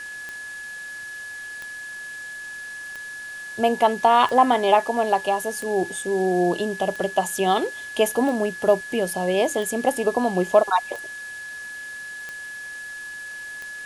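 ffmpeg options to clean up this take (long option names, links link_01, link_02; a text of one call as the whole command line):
ffmpeg -i in.wav -af "adeclick=threshold=4,bandreject=frequency=1700:width=30,afwtdn=0.0063" out.wav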